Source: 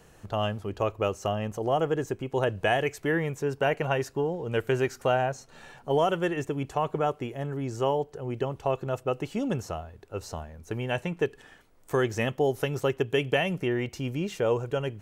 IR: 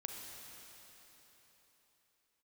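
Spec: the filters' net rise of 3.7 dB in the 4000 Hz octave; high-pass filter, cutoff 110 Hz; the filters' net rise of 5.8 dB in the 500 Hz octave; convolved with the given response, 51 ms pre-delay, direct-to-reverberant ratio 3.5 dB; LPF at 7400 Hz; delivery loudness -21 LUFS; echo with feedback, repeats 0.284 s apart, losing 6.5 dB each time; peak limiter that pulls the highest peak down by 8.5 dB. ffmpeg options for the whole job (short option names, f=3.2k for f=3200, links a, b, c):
-filter_complex "[0:a]highpass=110,lowpass=7.4k,equalizer=f=500:t=o:g=7,equalizer=f=4k:t=o:g=6,alimiter=limit=-15.5dB:level=0:latency=1,aecho=1:1:284|568|852|1136|1420|1704:0.473|0.222|0.105|0.0491|0.0231|0.0109,asplit=2[a][b];[1:a]atrim=start_sample=2205,adelay=51[c];[b][c]afir=irnorm=-1:irlink=0,volume=-2dB[d];[a][d]amix=inputs=2:normalize=0,volume=4dB"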